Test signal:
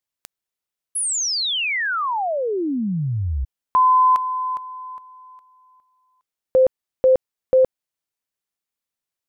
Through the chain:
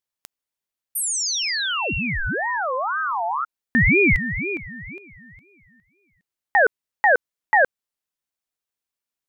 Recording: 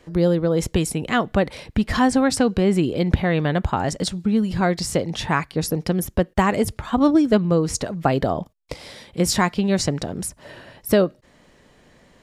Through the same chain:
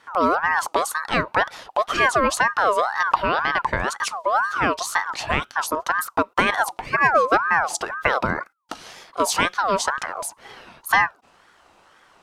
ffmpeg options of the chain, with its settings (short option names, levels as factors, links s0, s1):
-af "aeval=exprs='val(0)*sin(2*PI*1100*n/s+1100*0.3/2*sin(2*PI*2*n/s))':c=same,volume=1.19"